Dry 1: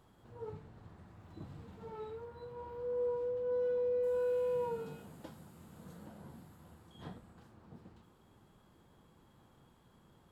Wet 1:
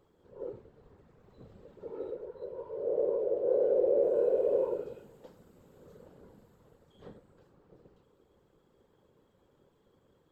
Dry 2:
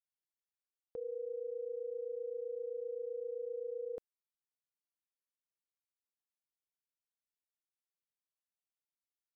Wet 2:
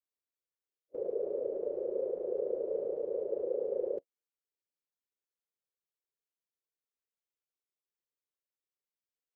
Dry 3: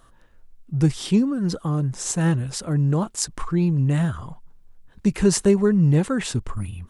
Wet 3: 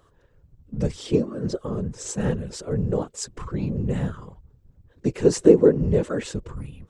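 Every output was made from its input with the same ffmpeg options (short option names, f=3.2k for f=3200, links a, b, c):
-af "superequalizer=6b=0.631:7b=3.98:16b=0.355,afftfilt=real='hypot(re,im)*cos(2*PI*random(0))':imag='hypot(re,im)*sin(2*PI*random(1))':win_size=512:overlap=0.75"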